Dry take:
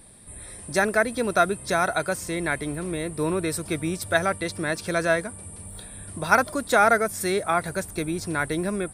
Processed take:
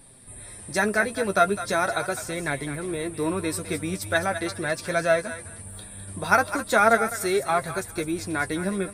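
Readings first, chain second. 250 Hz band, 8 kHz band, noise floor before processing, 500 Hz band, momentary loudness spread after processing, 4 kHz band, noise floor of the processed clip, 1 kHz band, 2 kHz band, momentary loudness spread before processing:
−1.0 dB, −0.5 dB, −42 dBFS, 0.0 dB, 16 LU, 0.0 dB, −43 dBFS, −0.5 dB, 0.0 dB, 17 LU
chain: feedback echo with a high-pass in the loop 207 ms, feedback 25%, high-pass 840 Hz, level −10 dB
flanger 0.4 Hz, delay 7.2 ms, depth 3.4 ms, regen +32%
level +3 dB

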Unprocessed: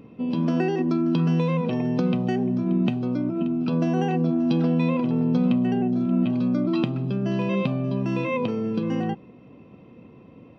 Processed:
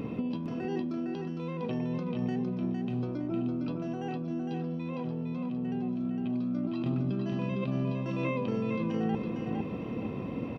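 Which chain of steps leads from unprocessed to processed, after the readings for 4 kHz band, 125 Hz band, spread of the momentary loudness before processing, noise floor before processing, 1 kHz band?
−10.0 dB, −8.5 dB, 4 LU, −49 dBFS, −8.5 dB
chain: compressor whose output falls as the input rises −34 dBFS, ratio −1
on a send: repeating echo 458 ms, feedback 28%, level −4.5 dB

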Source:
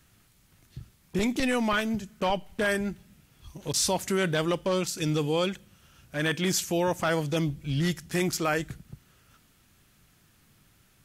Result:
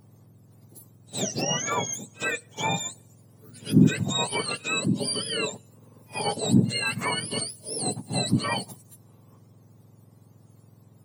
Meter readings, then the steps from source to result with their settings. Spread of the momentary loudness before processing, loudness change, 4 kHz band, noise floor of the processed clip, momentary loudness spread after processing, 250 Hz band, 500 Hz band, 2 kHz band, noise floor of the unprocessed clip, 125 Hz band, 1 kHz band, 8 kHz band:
8 LU, +1.5 dB, +4.0 dB, −56 dBFS, 10 LU, +2.5 dB, −4.5 dB, 0.0 dB, −63 dBFS, +3.5 dB, +0.5 dB, +3.0 dB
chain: frequency axis turned over on the octave scale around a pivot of 1,200 Hz
echo ahead of the sound 66 ms −22 dB
level +1.5 dB

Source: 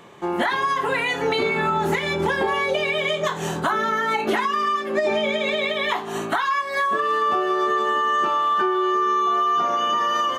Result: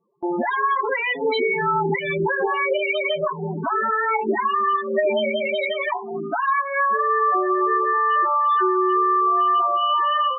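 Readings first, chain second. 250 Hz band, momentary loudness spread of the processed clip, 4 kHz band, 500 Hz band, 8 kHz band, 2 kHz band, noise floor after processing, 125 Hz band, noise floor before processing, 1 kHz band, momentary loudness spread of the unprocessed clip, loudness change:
0.0 dB, 6 LU, −4.0 dB, +1.0 dB, below −40 dB, −0.5 dB, −30 dBFS, −1.0 dB, −29 dBFS, +1.5 dB, 3 LU, +1.0 dB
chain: spectral peaks only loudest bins 8
noise gate with hold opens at −28 dBFS
level +2 dB

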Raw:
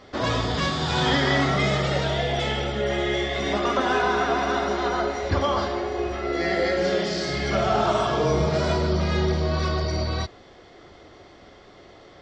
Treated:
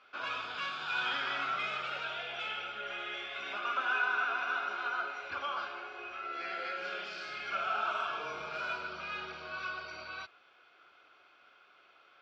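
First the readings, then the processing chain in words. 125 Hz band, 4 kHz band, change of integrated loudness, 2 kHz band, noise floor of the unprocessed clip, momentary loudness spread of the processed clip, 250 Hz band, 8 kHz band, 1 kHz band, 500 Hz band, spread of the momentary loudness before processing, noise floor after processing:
below −35 dB, −12.0 dB, −12.0 dB, −5.5 dB, −49 dBFS, 9 LU, −28.0 dB, below −20 dB, −10.0 dB, −22.0 dB, 5 LU, −63 dBFS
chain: pair of resonant band-passes 1,900 Hz, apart 0.76 octaves

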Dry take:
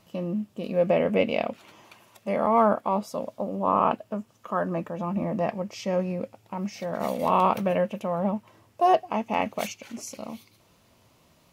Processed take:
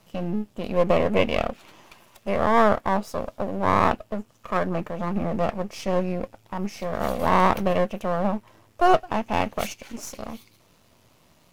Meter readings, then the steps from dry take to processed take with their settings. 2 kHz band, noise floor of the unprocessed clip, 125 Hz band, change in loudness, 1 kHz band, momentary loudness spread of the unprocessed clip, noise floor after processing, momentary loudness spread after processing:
+6.5 dB, −62 dBFS, +3.0 dB, +2.0 dB, +2.0 dB, 14 LU, −60 dBFS, 15 LU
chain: gain on one half-wave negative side −12 dB
level +5 dB

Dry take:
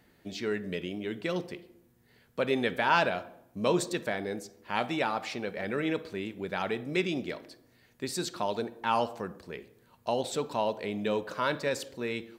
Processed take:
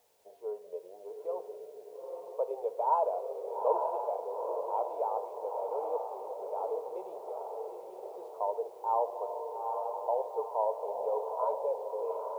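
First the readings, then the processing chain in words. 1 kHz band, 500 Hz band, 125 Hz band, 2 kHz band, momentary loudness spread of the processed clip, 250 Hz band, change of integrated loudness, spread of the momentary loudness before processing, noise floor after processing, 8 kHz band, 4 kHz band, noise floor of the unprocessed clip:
+0.5 dB, −0.5 dB, below −35 dB, below −30 dB, 13 LU, −22.5 dB, −3.0 dB, 12 LU, −52 dBFS, below −20 dB, below −30 dB, −64 dBFS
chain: elliptic band-pass filter 450–990 Hz, stop band 40 dB
bit-depth reduction 12 bits, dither triangular
feedback delay with all-pass diffusion 873 ms, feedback 45%, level −3.5 dB

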